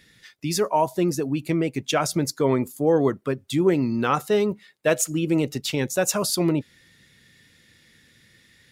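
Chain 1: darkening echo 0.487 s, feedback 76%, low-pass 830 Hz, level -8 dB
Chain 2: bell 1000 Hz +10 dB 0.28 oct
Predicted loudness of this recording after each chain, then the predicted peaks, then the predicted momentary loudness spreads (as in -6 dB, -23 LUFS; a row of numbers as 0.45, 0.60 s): -23.0, -22.5 LUFS; -4.5, -4.5 dBFS; 15, 6 LU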